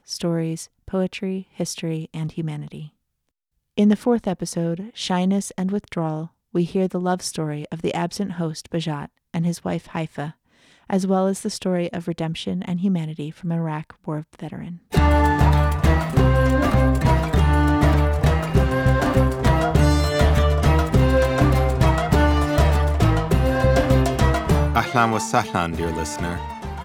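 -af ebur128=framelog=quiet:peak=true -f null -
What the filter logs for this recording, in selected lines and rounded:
Integrated loudness:
  I:         -21.0 LUFS
  Threshold: -31.3 LUFS
Loudness range:
  LRA:         8.0 LU
  Threshold: -41.1 LUFS
  LRA low:   -26.3 LUFS
  LRA high:  -18.3 LUFS
True peak:
  Peak:       -3.5 dBFS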